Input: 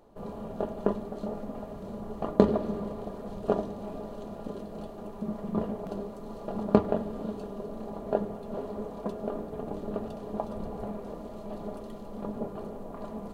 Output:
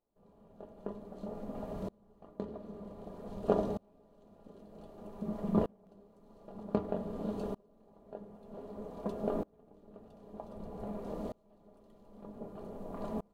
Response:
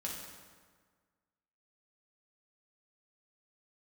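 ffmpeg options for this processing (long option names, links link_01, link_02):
-filter_complex "[0:a]asplit=2[link_01][link_02];[link_02]lowpass=frequency=1500:width=0.5412,lowpass=frequency=1500:width=1.3066[link_03];[1:a]atrim=start_sample=2205[link_04];[link_03][link_04]afir=irnorm=-1:irlink=0,volume=-13dB[link_05];[link_01][link_05]amix=inputs=2:normalize=0,aeval=exprs='val(0)*pow(10,-31*if(lt(mod(-0.53*n/s,1),2*abs(-0.53)/1000),1-mod(-0.53*n/s,1)/(2*abs(-0.53)/1000),(mod(-0.53*n/s,1)-2*abs(-0.53)/1000)/(1-2*abs(-0.53)/1000))/20)':channel_layout=same,volume=1.5dB"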